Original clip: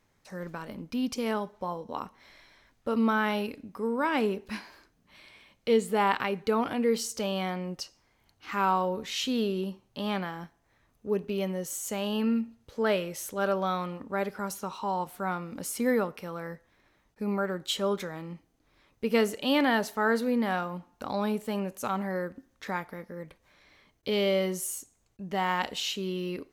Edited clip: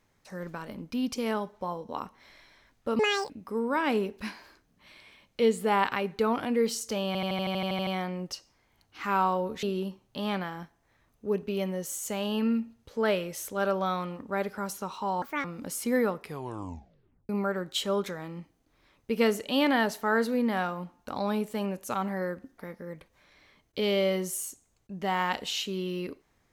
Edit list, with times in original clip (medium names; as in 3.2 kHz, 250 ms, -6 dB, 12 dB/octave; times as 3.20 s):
2.99–3.58 s: speed 191%
7.35 s: stutter 0.08 s, 11 plays
9.11–9.44 s: delete
15.03–15.38 s: speed 156%
16.10 s: tape stop 1.13 s
22.52–22.88 s: delete